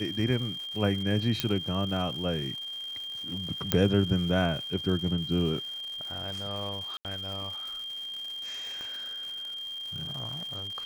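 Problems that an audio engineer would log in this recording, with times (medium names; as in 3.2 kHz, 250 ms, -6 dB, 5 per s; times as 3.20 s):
crackle 300 per s -38 dBFS
whine 3.2 kHz -35 dBFS
1.40 s: pop -10 dBFS
3.72 s: pop -6 dBFS
6.97–7.05 s: dropout 78 ms
8.81 s: pop -26 dBFS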